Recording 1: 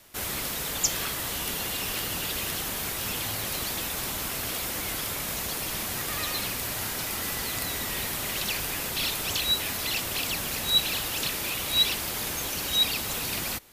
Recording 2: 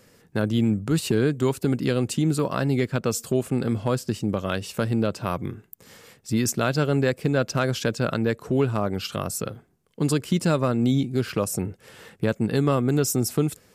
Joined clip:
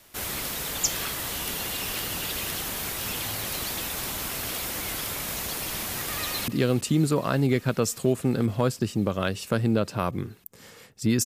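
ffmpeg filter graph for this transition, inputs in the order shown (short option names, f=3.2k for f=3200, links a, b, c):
-filter_complex "[0:a]apad=whole_dur=11.25,atrim=end=11.25,atrim=end=6.482[a];[1:a]atrim=start=1.748:end=6.52[b];[a][b]acrossfade=d=0.004:c1=hsin:c2=hsin,asplit=2[c][d];[d]afade=t=in:st=6.16:d=0.01,afade=t=out:st=6.48:d=0.01,aecho=0:1:330|660|990|1320|1650|1980|2310|2640|2970|3300|3630|3960:0.158489|0.134716|0.114509|0.0973323|0.0827324|0.0703226|0.0597742|0.050808|0.0431868|0.0367088|0.0312025|0.0265221[e];[c][e]amix=inputs=2:normalize=0"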